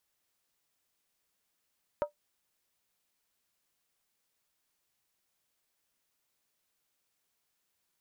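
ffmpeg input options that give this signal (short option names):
-f lavfi -i "aevalsrc='0.075*pow(10,-3*t/0.12)*sin(2*PI*590*t)+0.0335*pow(10,-3*t/0.095)*sin(2*PI*940.5*t)+0.015*pow(10,-3*t/0.082)*sin(2*PI*1260.2*t)+0.00668*pow(10,-3*t/0.079)*sin(2*PI*1354.6*t)+0.00299*pow(10,-3*t/0.074)*sin(2*PI*1565.3*t)':d=0.63:s=44100"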